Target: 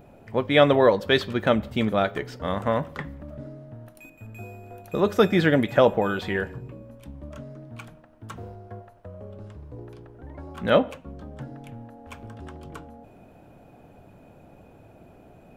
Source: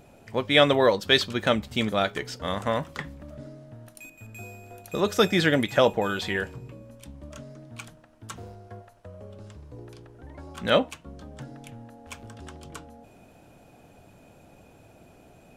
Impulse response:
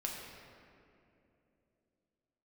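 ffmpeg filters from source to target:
-filter_complex "[0:a]equalizer=frequency=7000:width=0.41:gain=-13,asplit=2[link_01][link_02];[1:a]atrim=start_sample=2205,afade=type=out:start_time=0.26:duration=0.01,atrim=end_sample=11907,asetrate=48510,aresample=44100[link_03];[link_02][link_03]afir=irnorm=-1:irlink=0,volume=-18dB[link_04];[link_01][link_04]amix=inputs=2:normalize=0,volume=2.5dB"

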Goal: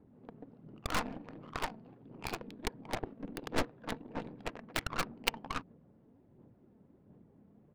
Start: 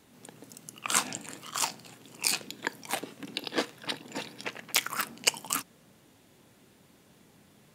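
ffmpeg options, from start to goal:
ffmpeg -i in.wav -af "aphaser=in_gain=1:out_gain=1:delay=4.6:decay=0.34:speed=1.4:type=sinusoidal,aresample=11025,asoftclip=type=tanh:threshold=-17.5dB,aresample=44100,adynamicsmooth=sensitivity=2:basefreq=560,aeval=exprs='0.168*(cos(1*acos(clip(val(0)/0.168,-1,1)))-cos(1*PI/2))+0.0841*(cos(3*acos(clip(val(0)/0.168,-1,1)))-cos(3*PI/2))+0.0133*(cos(8*acos(clip(val(0)/0.168,-1,1)))-cos(8*PI/2))':channel_layout=same,volume=6dB" out.wav

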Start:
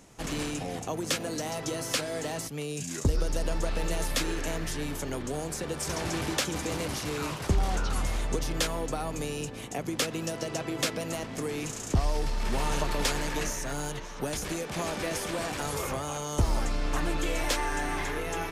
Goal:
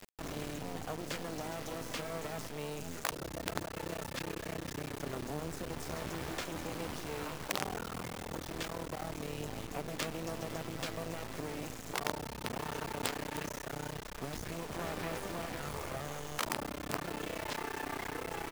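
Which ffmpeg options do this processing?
ffmpeg -i in.wav -filter_complex "[0:a]lowpass=frequency=2300:poles=1,areverse,acompressor=mode=upward:threshold=-30dB:ratio=2.5,areverse,aphaser=in_gain=1:out_gain=1:delay=4.7:decay=0.24:speed=0.2:type=sinusoidal,asplit=2[link_01][link_02];[link_02]adelay=508,lowpass=frequency=1600:poles=1,volume=-10dB,asplit=2[link_03][link_04];[link_04]adelay=508,lowpass=frequency=1600:poles=1,volume=0.39,asplit=2[link_05][link_06];[link_06]adelay=508,lowpass=frequency=1600:poles=1,volume=0.39,asplit=2[link_07][link_08];[link_08]adelay=508,lowpass=frequency=1600:poles=1,volume=0.39[link_09];[link_03][link_05][link_07][link_09]amix=inputs=4:normalize=0[link_10];[link_01][link_10]amix=inputs=2:normalize=0,acrusher=bits=4:dc=4:mix=0:aa=0.000001,afftfilt=real='re*lt(hypot(re,im),0.158)':imag='im*lt(hypot(re,im),0.158)':win_size=1024:overlap=0.75,volume=-3.5dB" out.wav

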